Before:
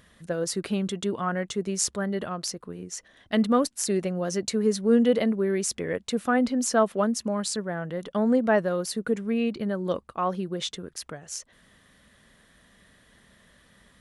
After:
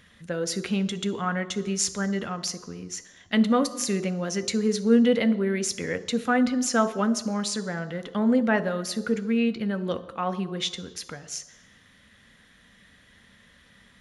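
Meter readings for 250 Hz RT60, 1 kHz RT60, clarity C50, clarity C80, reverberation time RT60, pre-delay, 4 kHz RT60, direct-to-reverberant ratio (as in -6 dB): 1.0 s, 1.1 s, 16.5 dB, 18.5 dB, 1.0 s, 3 ms, 1.1 s, 11.5 dB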